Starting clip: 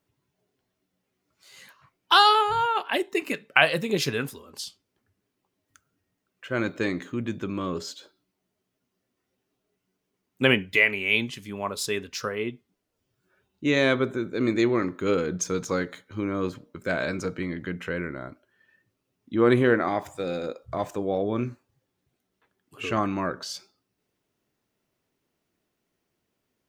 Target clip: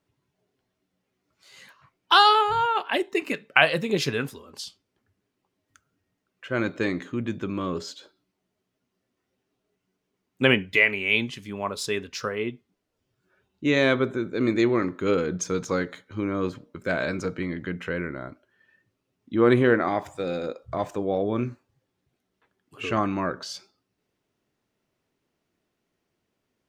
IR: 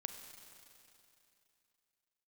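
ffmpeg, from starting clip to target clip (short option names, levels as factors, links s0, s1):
-af "highshelf=f=9500:g=-10,volume=1.12"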